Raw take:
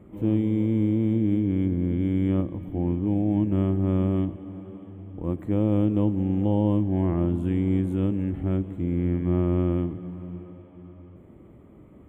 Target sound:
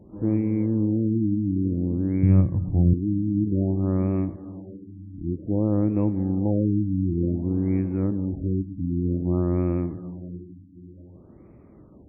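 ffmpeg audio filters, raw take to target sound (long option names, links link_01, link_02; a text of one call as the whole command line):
ffmpeg -i in.wav -filter_complex "[0:a]asettb=1/sr,asplit=3[link_01][link_02][link_03];[link_01]atrim=end=2.234[link_04];[link_02]atrim=start=2.23:end=2.94,asetpts=PTS-STARTPTS,afade=type=in:duration=0.004:curve=qsin,afade=type=out:start_time=0.706:duration=0.004:curve=qsin,lowshelf=frequency=200:width_type=q:width=1.5:gain=9.5[link_05];[link_03]atrim=start=2.936[link_06];[link_04][link_05]acrossfade=duration=0.004:curve1=hsin:curve2=qsin[link_07];[link_07][link_06]acrossfade=duration=0.004:curve1=qsin:curve2=hsin,afftfilt=real='re*lt(b*sr/1024,320*pow(2700/320,0.5+0.5*sin(2*PI*0.54*pts/sr)))':imag='im*lt(b*sr/1024,320*pow(2700/320,0.5+0.5*sin(2*PI*0.54*pts/sr)))':win_size=1024:overlap=0.75" out.wav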